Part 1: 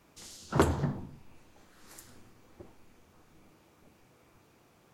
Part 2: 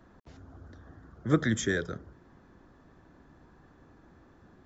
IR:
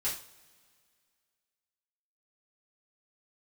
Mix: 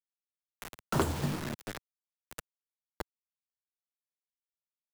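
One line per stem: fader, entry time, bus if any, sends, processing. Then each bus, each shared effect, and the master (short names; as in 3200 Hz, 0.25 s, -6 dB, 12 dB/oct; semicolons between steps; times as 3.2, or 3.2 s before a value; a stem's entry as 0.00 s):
+2.5 dB, 0.40 s, send -20 dB, dry
-12.5 dB, 0.00 s, send -14 dB, flange 0.74 Hz, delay 7.1 ms, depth 3.8 ms, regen -59%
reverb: on, pre-delay 3 ms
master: bit-crush 6-bit; three-band squash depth 70%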